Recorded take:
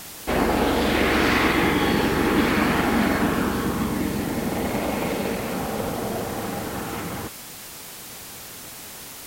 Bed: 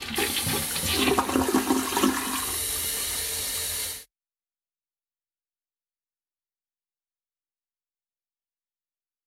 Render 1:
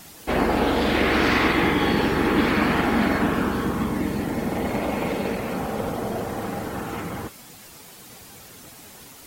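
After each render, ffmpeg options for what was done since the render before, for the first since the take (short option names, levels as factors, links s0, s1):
-af "afftdn=nr=8:nf=-39"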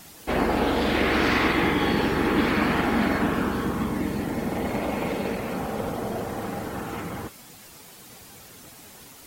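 -af "volume=0.794"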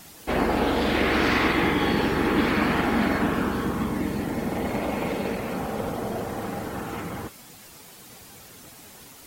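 -af anull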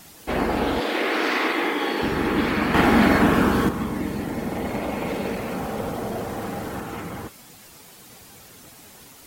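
-filter_complex "[0:a]asettb=1/sr,asplit=3[s0][s1][s2];[s0]atrim=end=0.804[s3];[s1]atrim=start=0.8:end=2.02,asetpts=PTS-STARTPTS,afade=t=in:d=0.004:c=qsin,afade=t=out:st=1.216:d=0.004:c=qsin,highpass=f=290:w=0.5412,highpass=f=290:w=1.3066[s4];[s2]atrim=start=2.016[s5];[s3][s4]acrossfade=d=0.004:c1=hsin:c2=qsin[s6];[s6][s5]acrossfade=d=0.004:c1=qsin:c2=hsin,asettb=1/sr,asplit=3[s7][s8][s9];[s7]atrim=end=2.744[s10];[s8]atrim=start=2.74:end=3.69,asetpts=PTS-STARTPTS,afade=t=in:d=0.004:c=qsin,afade=t=out:st=0.946:d=0.004:c=qsin,acontrast=74[s11];[s9]atrim=start=3.686[s12];[s10][s11]acrossfade=d=0.004:c1=hsin:c2=qsin[s13];[s13][s12]acrossfade=d=0.004:c1=qsin:c2=hsin,asettb=1/sr,asplit=3[s14][s15][s16];[s14]atrim=end=5.084[s17];[s15]atrim=start=5.08:end=6.8,asetpts=PTS-STARTPTS,afade=t=in:d=0.004:c=qsin,afade=t=out:st=1.716:d=0.004:c=qsin,aeval=exprs='val(0)+0.5*0.01*sgn(val(0))':c=same[s18];[s16]atrim=start=6.796[s19];[s17][s18]acrossfade=d=0.004:c1=hsin:c2=qsin[s20];[s20][s19]acrossfade=d=0.004:c1=qsin:c2=hsin"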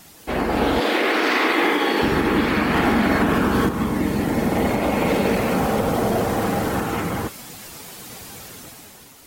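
-af "dynaudnorm=f=100:g=13:m=2.66,alimiter=limit=0.335:level=0:latency=1:release=141"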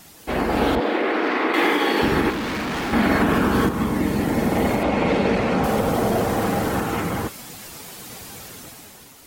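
-filter_complex "[0:a]asettb=1/sr,asplit=3[s0][s1][s2];[s0]atrim=end=0.754[s3];[s1]atrim=start=0.75:end=1.54,asetpts=PTS-STARTPTS,afade=t=in:d=0.004:c=qsin,afade=t=out:st=0.786:d=0.004:c=qsin,lowpass=f=1300:p=1[s4];[s2]atrim=start=1.536[s5];[s3][s4]acrossfade=d=0.004:c1=hsin:c2=qsin[s6];[s6][s5]acrossfade=d=0.004:c1=qsin:c2=hsin,asettb=1/sr,asplit=3[s7][s8][s9];[s7]atrim=end=2.304[s10];[s8]atrim=start=2.3:end=2.93,asetpts=PTS-STARTPTS,afade=t=in:d=0.004:c=qsin,afade=t=out:st=0.626:d=0.004:c=qsin,asoftclip=type=hard:threshold=0.0631[s11];[s9]atrim=start=2.926[s12];[s10][s11]acrossfade=d=0.004:c1=hsin:c2=qsin[s13];[s13][s12]acrossfade=d=0.004:c1=qsin:c2=hsin,asettb=1/sr,asplit=3[s14][s15][s16];[s14]atrim=end=4.834[s17];[s15]atrim=start=4.83:end=5.64,asetpts=PTS-STARTPTS,afade=t=in:d=0.004:c=qsin,afade=t=out:st=0.806:d=0.004:c=qsin,lowpass=5100[s18];[s16]atrim=start=5.636[s19];[s17][s18]acrossfade=d=0.004:c1=hsin:c2=qsin[s20];[s20][s19]acrossfade=d=0.004:c1=qsin:c2=hsin"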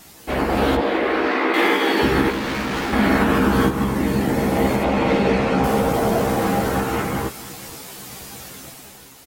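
-filter_complex "[0:a]asplit=2[s0][s1];[s1]adelay=15,volume=0.631[s2];[s0][s2]amix=inputs=2:normalize=0,aecho=1:1:476:0.119"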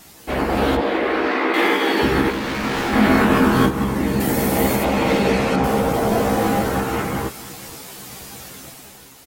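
-filter_complex "[0:a]asettb=1/sr,asplit=3[s0][s1][s2];[s0]atrim=end=2.614[s3];[s1]atrim=start=2.61:end=3.66,asetpts=PTS-STARTPTS,afade=t=in:d=0.004:c=qsin,afade=t=out:st=1.046:d=0.004:c=qsin,asplit=2[s4][s5];[s5]adelay=23,volume=0.794[s6];[s4][s6]amix=inputs=2:normalize=0,atrim=end_sample=46305[s7];[s2]atrim=start=3.656[s8];[s3][s7]acrossfade=d=0.004:c1=hsin:c2=qsin[s9];[s9][s8]acrossfade=d=0.004:c1=qsin:c2=hsin,asettb=1/sr,asplit=3[s10][s11][s12];[s10]atrim=end=4.204[s13];[s11]atrim=start=4.2:end=5.56,asetpts=PTS-STARTPTS,afade=t=in:d=0.004:c=qsin,afade=t=out:st=1.356:d=0.004:c=qsin,aemphasis=mode=production:type=50kf[s14];[s12]atrim=start=5.556[s15];[s13][s14]acrossfade=d=0.004:c1=hsin:c2=qsin[s16];[s16][s15]acrossfade=d=0.004:c1=qsin:c2=hsin,asettb=1/sr,asplit=3[s17][s18][s19];[s17]atrim=end=6.094[s20];[s18]atrim=start=6.09:end=6.63,asetpts=PTS-STARTPTS,afade=t=in:d=0.004:c=qsin,afade=t=out:st=0.536:d=0.004:c=qsin,asplit=2[s21][s22];[s22]adelay=19,volume=0.531[s23];[s21][s23]amix=inputs=2:normalize=0,atrim=end_sample=23814[s24];[s19]atrim=start=6.626[s25];[s20][s24]acrossfade=d=0.004:c1=hsin:c2=qsin[s26];[s26][s25]acrossfade=d=0.004:c1=qsin:c2=hsin"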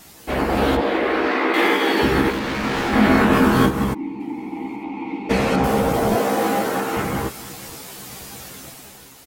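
-filter_complex "[0:a]asettb=1/sr,asplit=3[s0][s1][s2];[s0]atrim=end=2.394[s3];[s1]atrim=start=2.39:end=3.33,asetpts=PTS-STARTPTS,afade=t=in:d=0.004:c=qsin,afade=t=out:st=0.936:d=0.004:c=qsin,highshelf=f=8500:g=-5.5[s4];[s2]atrim=start=3.326[s5];[s3][s4]acrossfade=d=0.004:c1=hsin:c2=qsin[s6];[s6][s5]acrossfade=d=0.004:c1=qsin:c2=hsin,asplit=3[s7][s8][s9];[s7]afade=t=out:st=3.93:d=0.02[s10];[s8]asplit=3[s11][s12][s13];[s11]bandpass=f=300:t=q:w=8,volume=1[s14];[s12]bandpass=f=870:t=q:w=8,volume=0.501[s15];[s13]bandpass=f=2240:t=q:w=8,volume=0.355[s16];[s14][s15][s16]amix=inputs=3:normalize=0,afade=t=in:st=3.93:d=0.02,afade=t=out:st=5.29:d=0.02[s17];[s9]afade=t=in:st=5.29:d=0.02[s18];[s10][s17][s18]amix=inputs=3:normalize=0,asettb=1/sr,asplit=3[s19][s20][s21];[s19]atrim=end=6.164[s22];[s20]atrim=start=6.16:end=6.97,asetpts=PTS-STARTPTS,afade=t=in:d=0.004:c=qsin,afade=t=out:st=0.806:d=0.004:c=qsin,highpass=240[s23];[s21]atrim=start=6.966[s24];[s22][s23]acrossfade=d=0.004:c1=hsin:c2=qsin[s25];[s25][s24]acrossfade=d=0.004:c1=qsin:c2=hsin"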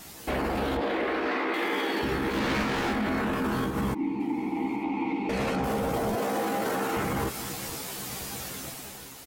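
-af "acompressor=threshold=0.0794:ratio=6,alimiter=limit=0.0944:level=0:latency=1:release=12"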